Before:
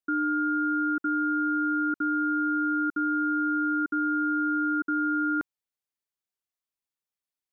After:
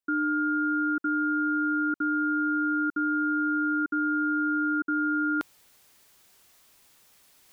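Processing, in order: reverse; upward compressor, threshold -34 dBFS; reverse

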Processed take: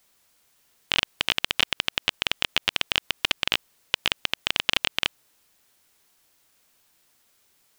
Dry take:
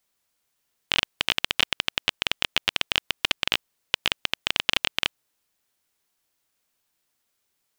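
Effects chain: loudness maximiser +12 dB; trim -1 dB

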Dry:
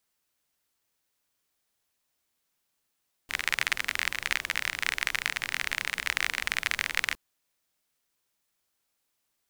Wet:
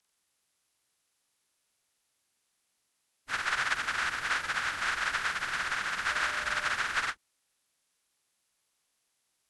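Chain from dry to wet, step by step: frequency axis rescaled in octaves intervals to 86%; 6.10–6.72 s: whistle 600 Hz -50 dBFS; endings held to a fixed fall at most 520 dB/s; trim +2 dB

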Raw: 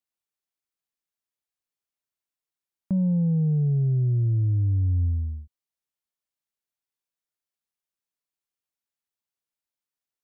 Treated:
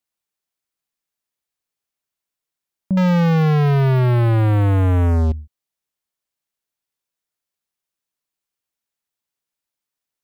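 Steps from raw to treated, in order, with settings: 2.97–5.32 s: waveshaping leveller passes 5; trim +5.5 dB

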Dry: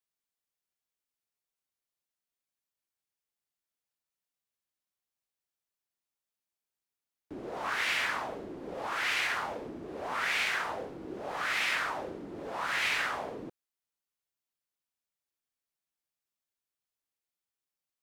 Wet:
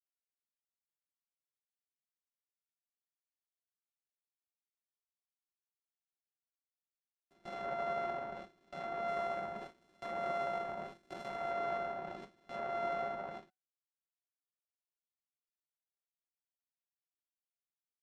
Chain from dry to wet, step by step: sorted samples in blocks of 64 samples; low-pass that closes with the level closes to 1.6 kHz, closed at -32 dBFS; gate with hold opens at -31 dBFS; 9.08–11.51 s: treble shelf 8 kHz +11.5 dB; comb 5.3 ms, depth 49%; dynamic bell 800 Hz, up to +6 dB, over -46 dBFS, Q 0.96; feedback comb 750 Hz, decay 0.18 s, harmonics all, mix 50%; trim -2 dB

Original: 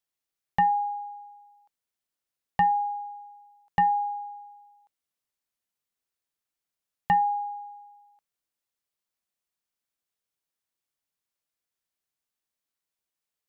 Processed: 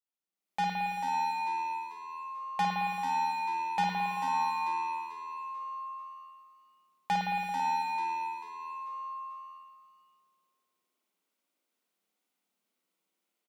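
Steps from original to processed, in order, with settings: steep high-pass 170 Hz 96 dB/octave; bass shelf 410 Hz +8 dB; band-stop 1.7 kHz, Q 7.3; waveshaping leveller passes 3; peak limiter -32.5 dBFS, peak gain reduction 20 dB; level rider gain up to 15 dB; on a send: frequency-shifting echo 441 ms, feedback 42%, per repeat +82 Hz, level -9.5 dB; on the sum: spring tank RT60 1.9 s, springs 55 ms, chirp 55 ms, DRR -2.5 dB; trim -7 dB

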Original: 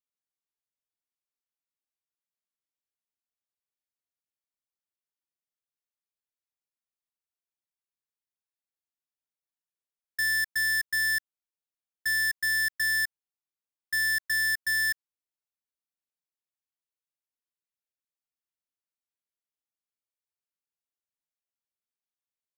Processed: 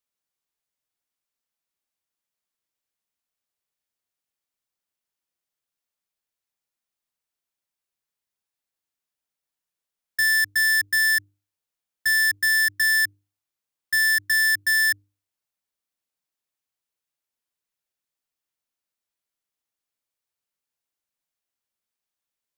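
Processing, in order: hum notches 50/100/150/200/250/300/350/400/450 Hz; trim +6.5 dB

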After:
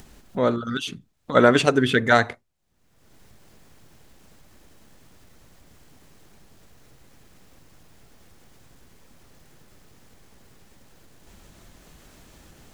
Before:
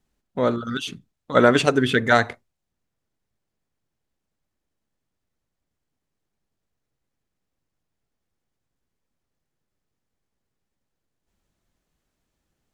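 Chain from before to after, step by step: upward compressor, threshold -28 dBFS

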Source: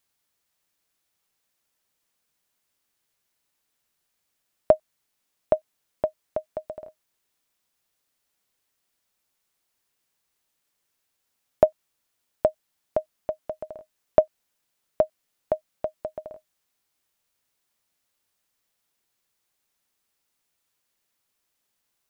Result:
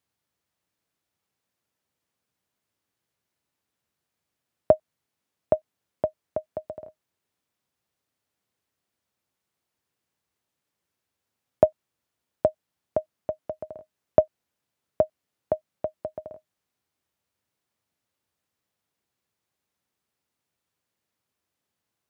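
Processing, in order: high-pass 71 Hz 24 dB/octave; tilt EQ -2 dB/octave; trim -2 dB

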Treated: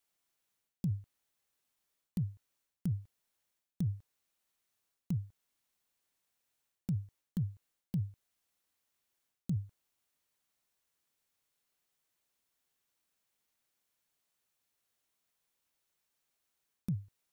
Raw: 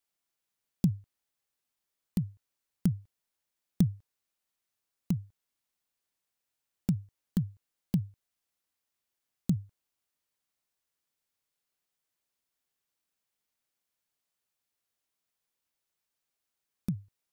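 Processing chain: band-stop 4.9 kHz, Q 27; reverse; compression 12:1, threshold -34 dBFS, peak gain reduction 16 dB; reverse; trim +3 dB

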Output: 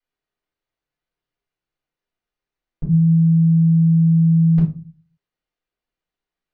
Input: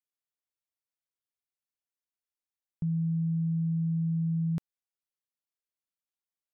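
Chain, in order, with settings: distance through air 190 m; simulated room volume 130 m³, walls furnished, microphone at 5 m; trim +2.5 dB

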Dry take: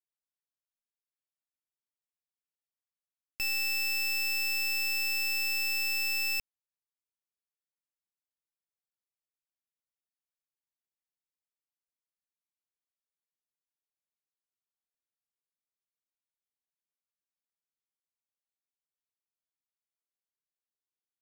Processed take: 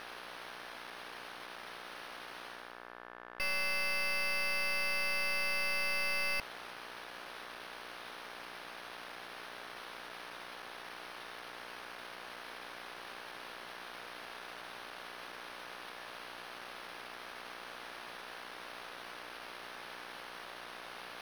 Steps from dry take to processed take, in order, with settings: reverse; upward compressor, threshold -43 dBFS; reverse; careless resampling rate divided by 6×, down none, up hold; mains buzz 60 Hz, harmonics 29, -62 dBFS -2 dB/octave; overdrive pedal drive 29 dB, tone 4.3 kHz, clips at -27.5 dBFS; trim -3 dB

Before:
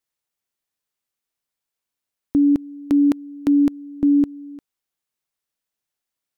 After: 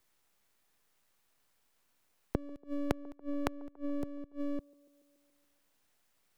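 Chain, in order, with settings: inverted gate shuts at -26 dBFS, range -30 dB; half-wave rectifier; feedback echo behind a band-pass 142 ms, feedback 55%, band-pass 540 Hz, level -23.5 dB; three bands compressed up and down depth 40%; trim +4.5 dB

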